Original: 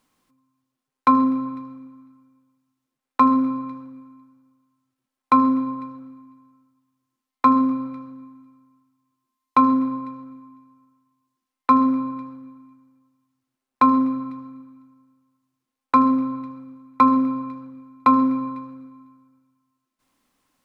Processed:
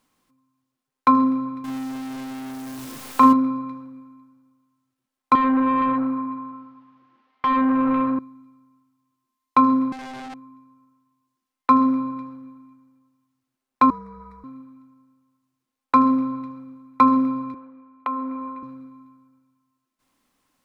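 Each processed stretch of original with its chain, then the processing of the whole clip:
1.64–3.33 s: jump at every zero crossing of -30.5 dBFS + doubling 38 ms -6 dB
5.35–8.19 s: compression 5:1, threshold -32 dBFS + overdrive pedal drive 34 dB, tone 1.8 kHz, clips at -9 dBFS + distance through air 300 m
9.92–10.34 s: one-bit comparator + distance through air 71 m + ring modulator 520 Hz
13.90–14.44 s: compression 2:1, threshold -28 dBFS + frequency shift -67 Hz + static phaser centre 810 Hz, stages 6
17.54–18.63 s: three-band isolator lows -22 dB, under 270 Hz, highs -18 dB, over 2.9 kHz + compression 2.5:1, threshold -27 dBFS
whole clip: none

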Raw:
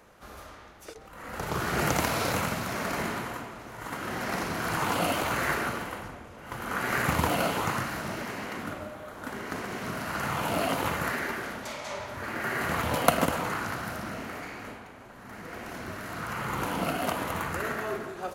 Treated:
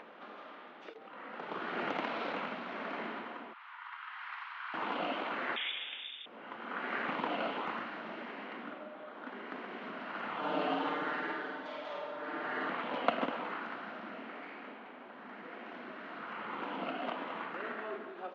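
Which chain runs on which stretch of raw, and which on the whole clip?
3.53–4.74 s: steep high-pass 950 Hz 48 dB/octave + distance through air 120 m
5.56–6.26 s: bass shelf 190 Hz +10 dB + frequency inversion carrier 3.6 kHz
10.39–12.70 s: peaking EQ 2.3 kHz -7 dB 0.66 oct + comb 6.6 ms, depth 93% + flutter echo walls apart 8.7 m, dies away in 0.69 s
whole clip: elliptic band-pass 230–3300 Hz, stop band 50 dB; upward compressor, threshold -34 dBFS; trim -7.5 dB

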